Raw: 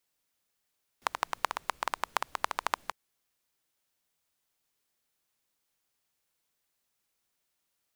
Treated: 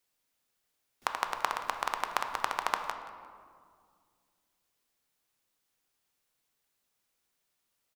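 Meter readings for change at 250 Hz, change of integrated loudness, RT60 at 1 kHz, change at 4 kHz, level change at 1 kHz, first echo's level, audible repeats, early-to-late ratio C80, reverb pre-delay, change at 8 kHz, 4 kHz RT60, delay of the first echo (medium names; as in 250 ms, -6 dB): +1.5 dB, +1.0 dB, 2.0 s, +0.5 dB, +1.0 dB, -18.5 dB, 1, 8.0 dB, 3 ms, 0.0 dB, 1.0 s, 176 ms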